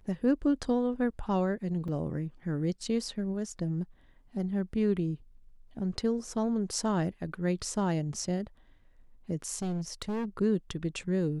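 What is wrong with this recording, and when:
1.88 s: dropout 3.8 ms
9.62–10.25 s: clipped -29.5 dBFS

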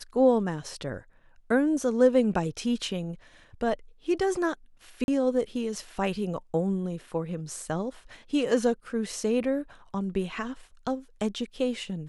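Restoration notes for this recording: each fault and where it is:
5.04–5.08 s: dropout 41 ms

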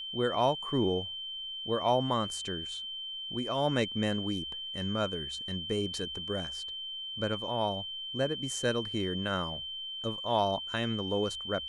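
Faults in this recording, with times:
whine 3.1 kHz -37 dBFS

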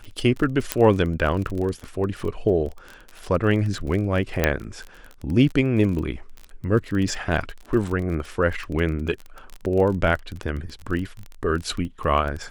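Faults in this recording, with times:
crackle 25 per s -28 dBFS
0.72 s: pop -3 dBFS
4.44 s: pop -4 dBFS

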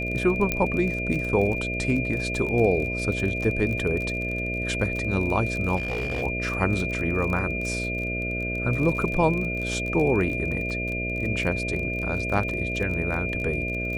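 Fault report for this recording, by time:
buzz 60 Hz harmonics 11 -31 dBFS
crackle 29 per s -29 dBFS
whine 2.4 kHz -29 dBFS
0.52 s: pop -9 dBFS
5.76–6.23 s: clipped -24 dBFS

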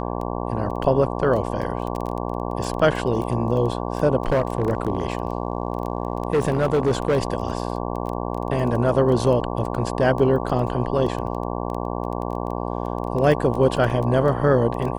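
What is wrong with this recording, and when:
buzz 60 Hz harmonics 19 -27 dBFS
crackle 11 per s -26 dBFS
4.20–7.35 s: clipped -14.5 dBFS

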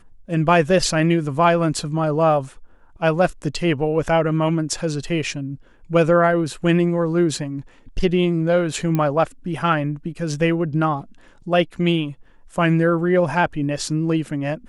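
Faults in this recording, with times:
8.95 s: pop -10 dBFS

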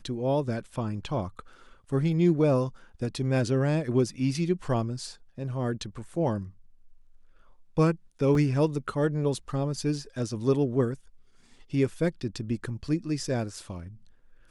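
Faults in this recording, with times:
8.35 s: dropout 2.1 ms

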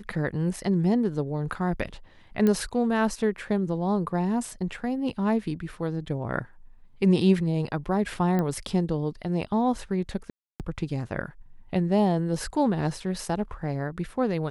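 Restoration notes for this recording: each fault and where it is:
2.47 s: pop -13 dBFS
8.39 s: pop -16 dBFS
10.30–10.60 s: dropout 298 ms

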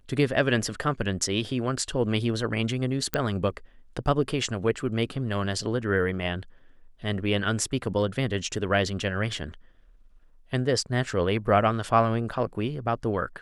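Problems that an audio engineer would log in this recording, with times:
3.14 s: pop -8 dBFS

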